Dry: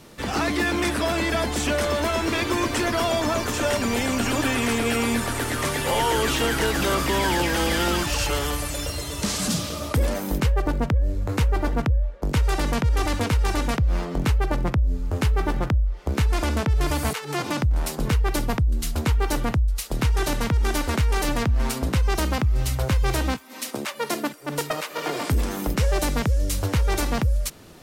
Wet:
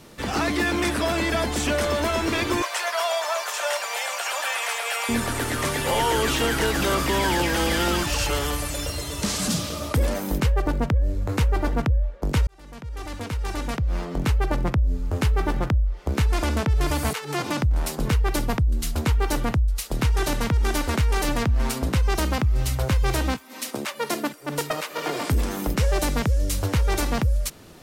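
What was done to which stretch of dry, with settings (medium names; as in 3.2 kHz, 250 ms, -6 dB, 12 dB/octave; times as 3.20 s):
2.62–5.09 s: steep high-pass 590 Hz
12.47–14.45 s: fade in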